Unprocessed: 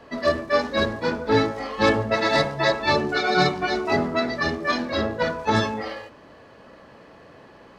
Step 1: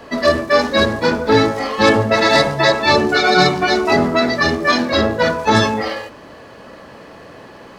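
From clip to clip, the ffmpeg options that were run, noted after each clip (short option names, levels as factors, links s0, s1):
-filter_complex "[0:a]highshelf=f=7200:g=8.5,bandreject=f=50:t=h:w=6,bandreject=f=100:t=h:w=6,bandreject=f=150:t=h:w=6,asplit=2[s0][s1];[s1]alimiter=limit=0.188:level=0:latency=1,volume=1.41[s2];[s0][s2]amix=inputs=2:normalize=0,volume=1.19"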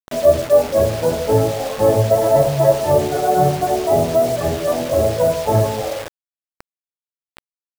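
-af "lowpass=f=640:t=q:w=3.5,lowshelf=f=170:t=q:w=3:g=6,acrusher=bits=3:mix=0:aa=0.000001,volume=0.501"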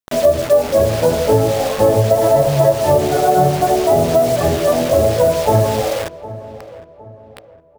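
-filter_complex "[0:a]acompressor=threshold=0.2:ratio=4,asplit=2[s0][s1];[s1]adelay=760,lowpass=f=1600:p=1,volume=0.15,asplit=2[s2][s3];[s3]adelay=760,lowpass=f=1600:p=1,volume=0.41,asplit=2[s4][s5];[s5]adelay=760,lowpass=f=1600:p=1,volume=0.41,asplit=2[s6][s7];[s7]adelay=760,lowpass=f=1600:p=1,volume=0.41[s8];[s0][s2][s4][s6][s8]amix=inputs=5:normalize=0,volume=1.78"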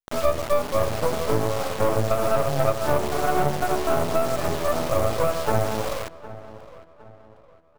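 -af "aeval=exprs='max(val(0),0)':c=same,volume=0.562"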